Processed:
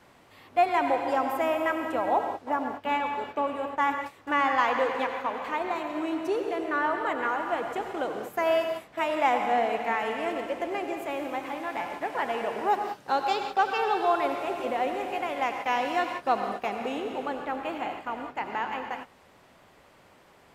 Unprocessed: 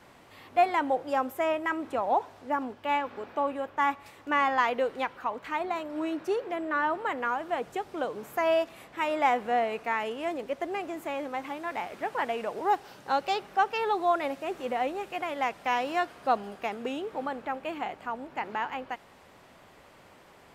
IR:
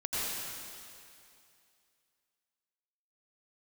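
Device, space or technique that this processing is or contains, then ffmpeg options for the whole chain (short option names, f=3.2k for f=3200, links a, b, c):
keyed gated reverb: -filter_complex "[0:a]asplit=3[a][b][c];[1:a]atrim=start_sample=2205[d];[b][d]afir=irnorm=-1:irlink=0[e];[c]apad=whole_len=906054[f];[e][f]sidechaingate=range=-33dB:threshold=-43dB:ratio=16:detection=peak,volume=-8dB[g];[a][g]amix=inputs=2:normalize=0,volume=-2dB"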